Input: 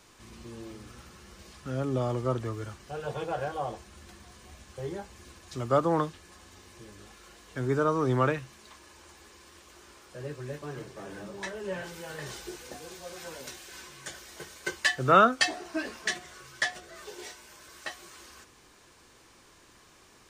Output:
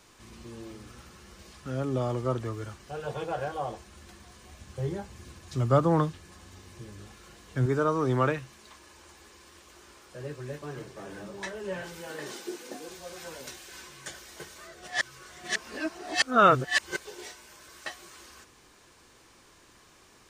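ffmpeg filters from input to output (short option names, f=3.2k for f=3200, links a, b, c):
-filter_complex "[0:a]asettb=1/sr,asplit=3[a][b][c];[a]atrim=end=4.614[d];[b]atrim=start=4.61:end=7.66,asetpts=PTS-STARTPTS,afade=t=in:d=0.004:c=qsin,afade=t=out:st=3.046:d=0.004:c=qsin,equalizer=f=120:t=o:w=1.6:g=9.5[e];[c]atrim=start=7.656[f];[d][e]acrossfade=d=0.004:c1=hsin:c2=qsin[g];[g][f]acrossfade=d=0.004:c1=qsin:c2=hsin,asettb=1/sr,asplit=3[h][i][j];[h]atrim=end=12.074[k];[i]atrim=start=12.07:end=12.89,asetpts=PTS-STARTPTS,afade=t=in:d=0.004:c=qsin,afade=t=out:st=0.816:d=0.004:c=qsin,highpass=f=260:t=q:w=2.2[l];[j]atrim=start=12.886[m];[k][l]acrossfade=d=0.004:c1=hsin:c2=qsin[n];[n][m]acrossfade=d=0.004:c1=qsin:c2=hsin,asplit=3[o][p][q];[o]atrim=end=14.582[r];[p]atrim=start=14.578:end=17.052,asetpts=PTS-STARTPTS,areverse[s];[q]atrim=start=17.048[t];[r][s]acrossfade=d=0.004:c1=hsin:c2=hsin[u];[u][t]acrossfade=d=0.004:c1=hsin:c2=hsin"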